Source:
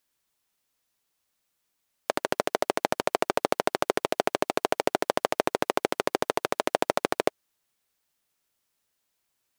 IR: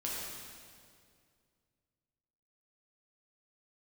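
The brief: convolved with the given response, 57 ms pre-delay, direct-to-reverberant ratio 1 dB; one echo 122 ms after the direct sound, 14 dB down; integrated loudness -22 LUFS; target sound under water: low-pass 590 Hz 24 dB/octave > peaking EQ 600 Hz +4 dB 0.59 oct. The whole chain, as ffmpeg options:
-filter_complex "[0:a]aecho=1:1:122:0.2,asplit=2[s0][s1];[1:a]atrim=start_sample=2205,adelay=57[s2];[s1][s2]afir=irnorm=-1:irlink=0,volume=0.596[s3];[s0][s3]amix=inputs=2:normalize=0,lowpass=f=590:w=0.5412,lowpass=f=590:w=1.3066,equalizer=f=600:t=o:w=0.59:g=4,volume=1.88"

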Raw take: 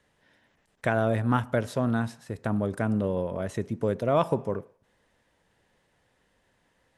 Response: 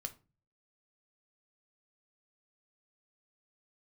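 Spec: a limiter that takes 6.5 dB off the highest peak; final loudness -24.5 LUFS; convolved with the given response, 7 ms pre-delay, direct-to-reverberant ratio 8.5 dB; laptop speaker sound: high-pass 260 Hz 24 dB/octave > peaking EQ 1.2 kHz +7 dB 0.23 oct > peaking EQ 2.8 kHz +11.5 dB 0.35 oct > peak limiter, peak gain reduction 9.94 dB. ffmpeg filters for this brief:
-filter_complex "[0:a]alimiter=limit=0.168:level=0:latency=1,asplit=2[s0][s1];[1:a]atrim=start_sample=2205,adelay=7[s2];[s1][s2]afir=irnorm=-1:irlink=0,volume=0.501[s3];[s0][s3]amix=inputs=2:normalize=0,highpass=f=260:w=0.5412,highpass=f=260:w=1.3066,equalizer=f=1200:t=o:w=0.23:g=7,equalizer=f=2800:t=o:w=0.35:g=11.5,volume=2.82,alimiter=limit=0.237:level=0:latency=1"

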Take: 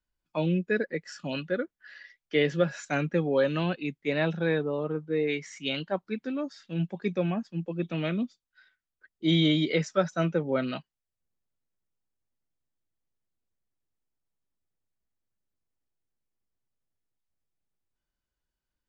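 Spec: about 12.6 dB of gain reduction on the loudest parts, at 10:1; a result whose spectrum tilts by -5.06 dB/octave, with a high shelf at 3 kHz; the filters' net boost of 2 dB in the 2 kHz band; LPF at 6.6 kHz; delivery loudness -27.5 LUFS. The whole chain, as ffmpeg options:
-af "lowpass=6600,equalizer=f=2000:t=o:g=4.5,highshelf=f=3000:g=-5.5,acompressor=threshold=0.0251:ratio=10,volume=3.35"

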